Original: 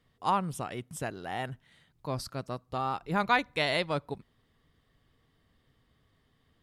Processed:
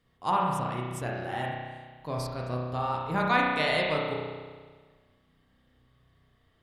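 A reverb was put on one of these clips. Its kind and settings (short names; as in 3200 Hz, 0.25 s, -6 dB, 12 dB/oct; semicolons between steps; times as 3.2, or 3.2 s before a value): spring tank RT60 1.5 s, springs 32 ms, chirp 40 ms, DRR -2.5 dB; gain -1.5 dB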